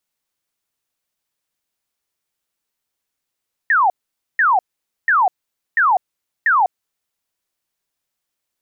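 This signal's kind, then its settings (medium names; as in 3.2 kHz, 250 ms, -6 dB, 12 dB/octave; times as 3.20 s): burst of laser zaps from 1.9 kHz, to 700 Hz, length 0.20 s sine, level -11 dB, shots 5, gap 0.49 s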